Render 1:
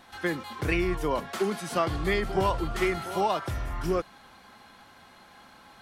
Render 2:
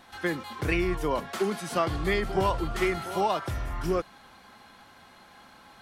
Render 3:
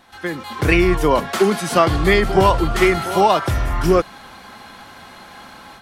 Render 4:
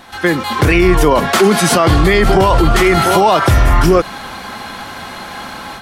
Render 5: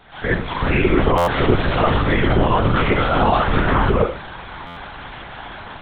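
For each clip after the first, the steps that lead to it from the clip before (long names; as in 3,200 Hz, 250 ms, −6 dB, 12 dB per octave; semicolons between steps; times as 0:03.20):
no processing that can be heard
automatic gain control gain up to 11 dB; level +2 dB
boost into a limiter +13 dB; level −1 dB
four-comb reverb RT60 0.41 s, combs from 32 ms, DRR −2.5 dB; linear-prediction vocoder at 8 kHz whisper; buffer that repeats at 0:01.17/0:04.66, samples 512, times 8; level −10 dB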